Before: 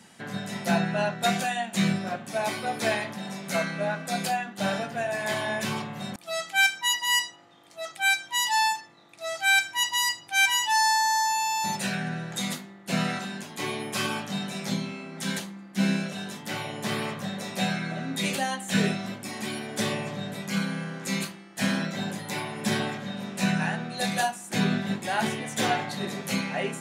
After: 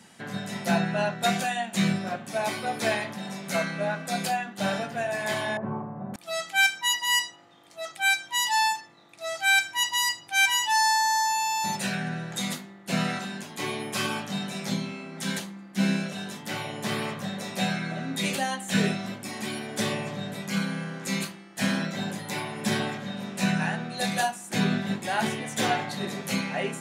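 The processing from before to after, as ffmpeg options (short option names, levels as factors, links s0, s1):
-filter_complex "[0:a]asettb=1/sr,asplit=3[s0][s1][s2];[s0]atrim=end=5.574[s3];[s1]atrim=start=5.57:end=6.14,asetpts=PTS-STARTPTS,afade=t=in:d=0.004:c=qsin,afade=t=out:st=0.566:d=0.004:c=qsin,lowpass=f=1100:w=0.5412,lowpass=f=1100:w=1.3066[s4];[s2]atrim=start=6.136[s5];[s3][s4]acrossfade=d=0.004:c1=hsin:c2=qsin[s6];[s6][s5]acrossfade=d=0.004:c1=qsin:c2=hsin"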